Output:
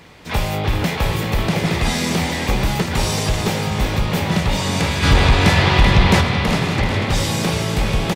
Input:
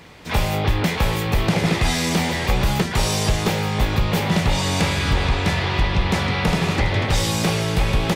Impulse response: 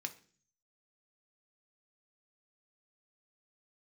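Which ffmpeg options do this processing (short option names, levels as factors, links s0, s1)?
-filter_complex "[0:a]asplit=3[s0][s1][s2];[s0]afade=t=out:st=5.02:d=0.02[s3];[s1]acontrast=89,afade=t=in:st=5.02:d=0.02,afade=t=out:st=6.2:d=0.02[s4];[s2]afade=t=in:st=6.2:d=0.02[s5];[s3][s4][s5]amix=inputs=3:normalize=0,asplit=2[s6][s7];[s7]asplit=5[s8][s9][s10][s11][s12];[s8]adelay=384,afreqshift=39,volume=0.355[s13];[s9]adelay=768,afreqshift=78,volume=0.164[s14];[s10]adelay=1152,afreqshift=117,volume=0.075[s15];[s11]adelay=1536,afreqshift=156,volume=0.0347[s16];[s12]adelay=1920,afreqshift=195,volume=0.0158[s17];[s13][s14][s15][s16][s17]amix=inputs=5:normalize=0[s18];[s6][s18]amix=inputs=2:normalize=0"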